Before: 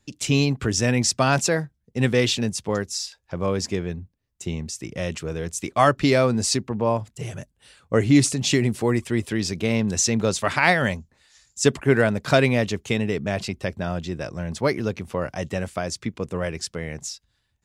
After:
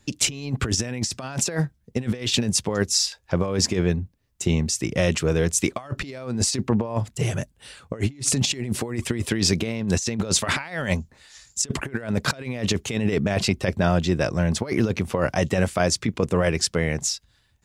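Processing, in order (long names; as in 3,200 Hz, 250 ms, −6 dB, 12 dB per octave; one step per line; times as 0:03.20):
compressor whose output falls as the input rises −26 dBFS, ratio −0.5
level +3.5 dB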